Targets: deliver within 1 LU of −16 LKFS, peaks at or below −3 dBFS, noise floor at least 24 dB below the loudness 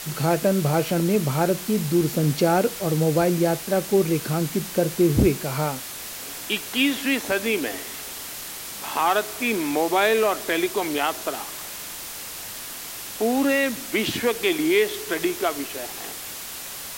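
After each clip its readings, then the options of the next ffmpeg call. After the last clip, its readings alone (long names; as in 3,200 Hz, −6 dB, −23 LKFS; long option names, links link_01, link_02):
background noise floor −35 dBFS; target noise floor −48 dBFS; integrated loudness −23.5 LKFS; sample peak −7.0 dBFS; target loudness −16.0 LKFS
→ -af "afftdn=noise_reduction=13:noise_floor=-35"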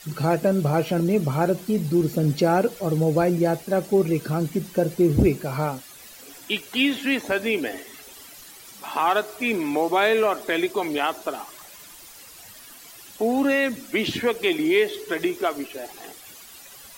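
background noise floor −45 dBFS; target noise floor −47 dBFS
→ -af "afftdn=noise_reduction=6:noise_floor=-45"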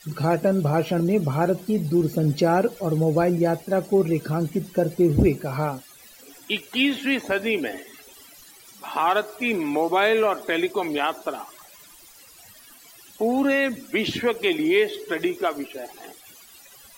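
background noise floor −49 dBFS; integrated loudness −23.0 LKFS; sample peak −7.5 dBFS; target loudness −16.0 LKFS
→ -af "volume=7dB,alimiter=limit=-3dB:level=0:latency=1"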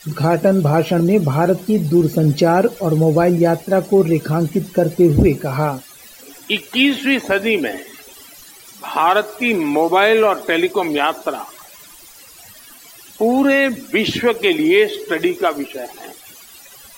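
integrated loudness −16.5 LKFS; sample peak −3.0 dBFS; background noise floor −42 dBFS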